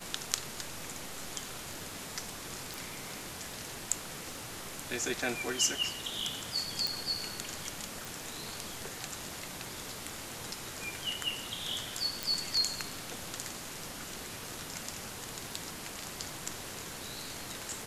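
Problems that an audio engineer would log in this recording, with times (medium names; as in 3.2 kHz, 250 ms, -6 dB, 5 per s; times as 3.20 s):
crackle 37 per s -46 dBFS
2.74 s: pop
6.87 s: pop
8.05 s: pop
12.23 s: pop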